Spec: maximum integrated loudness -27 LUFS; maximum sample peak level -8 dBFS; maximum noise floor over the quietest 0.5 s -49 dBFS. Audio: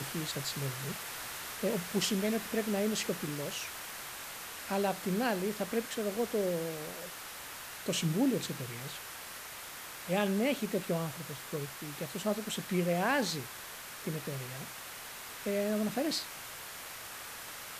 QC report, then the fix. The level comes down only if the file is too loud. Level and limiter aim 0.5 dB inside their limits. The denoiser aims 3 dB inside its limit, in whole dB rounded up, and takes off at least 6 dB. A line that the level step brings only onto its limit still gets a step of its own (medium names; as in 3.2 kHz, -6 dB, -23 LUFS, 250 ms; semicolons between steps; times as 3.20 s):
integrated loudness -35.0 LUFS: pass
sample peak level -16.0 dBFS: pass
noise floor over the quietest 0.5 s -46 dBFS: fail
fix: noise reduction 6 dB, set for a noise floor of -46 dBFS